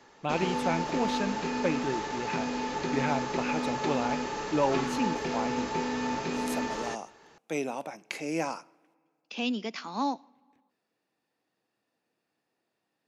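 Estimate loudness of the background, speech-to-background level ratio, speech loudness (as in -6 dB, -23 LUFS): -32.0 LUFS, -2.0 dB, -34.0 LUFS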